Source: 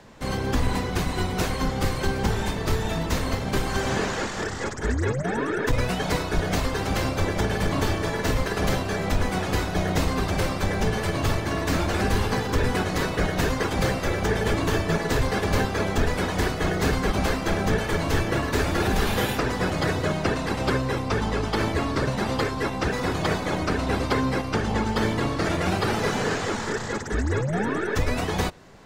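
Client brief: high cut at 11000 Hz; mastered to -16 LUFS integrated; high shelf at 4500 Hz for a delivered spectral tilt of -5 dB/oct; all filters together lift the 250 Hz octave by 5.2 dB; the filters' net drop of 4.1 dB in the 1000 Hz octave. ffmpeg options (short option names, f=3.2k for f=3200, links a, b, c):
-af "lowpass=11k,equalizer=f=250:t=o:g=7,equalizer=f=1k:t=o:g=-6.5,highshelf=f=4.5k:g=8.5,volume=7.5dB"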